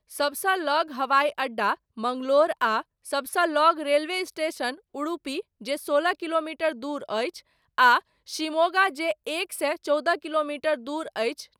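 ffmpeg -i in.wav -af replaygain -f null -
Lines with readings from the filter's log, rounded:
track_gain = +4.7 dB
track_peak = 0.289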